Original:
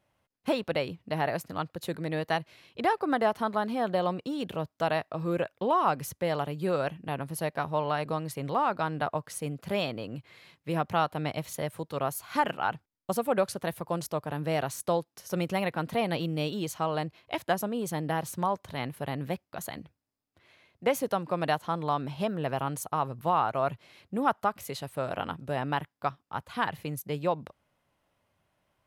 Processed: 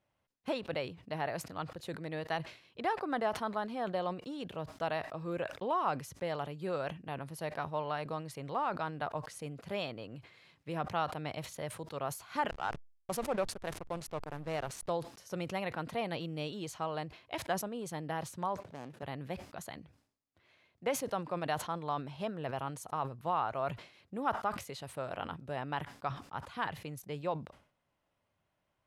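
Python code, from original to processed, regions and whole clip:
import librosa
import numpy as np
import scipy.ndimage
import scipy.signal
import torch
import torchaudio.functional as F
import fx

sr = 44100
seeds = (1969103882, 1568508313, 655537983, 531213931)

y = fx.chain(x, sr, fx.high_shelf(hz=7100.0, db=8.5),
    fx.backlash(play_db=-31.0), at=(12.49, 14.9))
y = fx.chain(y, sr, fx.median_filter(points=41),
    fx.highpass(hz=180.0, slope=12), at=(18.6, 19.03))
y = scipy.signal.sosfilt(scipy.signal.bessel(2, 8400.0, 'lowpass', norm='mag', fs=sr, output='sos'), y)
y = fx.dynamic_eq(y, sr, hz=210.0, q=0.81, threshold_db=-41.0, ratio=4.0, max_db=-3)
y = fx.sustainer(y, sr, db_per_s=120.0)
y = F.gain(torch.from_numpy(y), -6.5).numpy()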